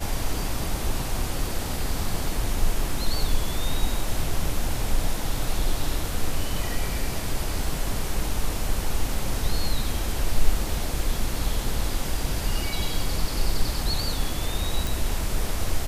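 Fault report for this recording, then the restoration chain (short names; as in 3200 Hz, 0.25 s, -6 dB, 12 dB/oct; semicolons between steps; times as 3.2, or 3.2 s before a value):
14.87 pop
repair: de-click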